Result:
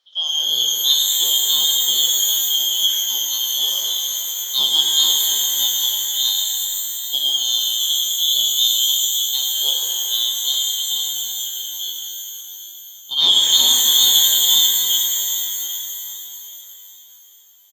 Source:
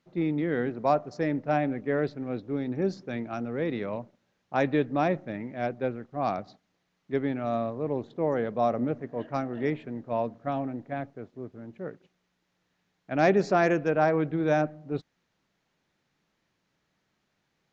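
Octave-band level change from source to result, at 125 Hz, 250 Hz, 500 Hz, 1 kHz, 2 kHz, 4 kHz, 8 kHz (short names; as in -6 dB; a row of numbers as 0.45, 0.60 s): under -20 dB, under -15 dB, under -15 dB, -9.0 dB, -4.5 dB, +38.5 dB, n/a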